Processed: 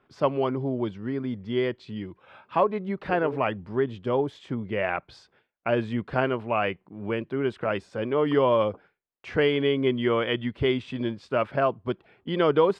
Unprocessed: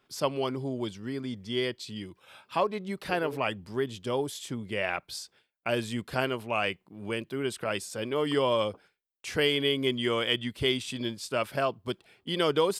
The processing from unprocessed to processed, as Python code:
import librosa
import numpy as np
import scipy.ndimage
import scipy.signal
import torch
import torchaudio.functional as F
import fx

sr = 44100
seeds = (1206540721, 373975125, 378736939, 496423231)

y = scipy.signal.sosfilt(scipy.signal.butter(2, 1800.0, 'lowpass', fs=sr, output='sos'), x)
y = F.gain(torch.from_numpy(y), 5.0).numpy()